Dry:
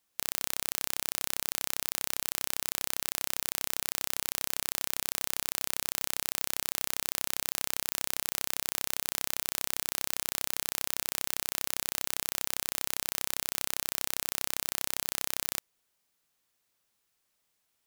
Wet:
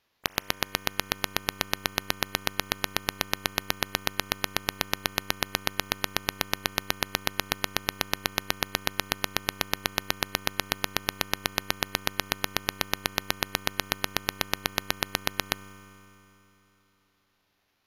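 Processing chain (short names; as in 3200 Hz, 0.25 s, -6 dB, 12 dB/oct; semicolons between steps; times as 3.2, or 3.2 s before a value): spring tank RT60 3.3 s, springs 41 ms, chirp 25 ms, DRR 8.5 dB; sample-and-hold 4×; formant shift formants -5 st; gain +2.5 dB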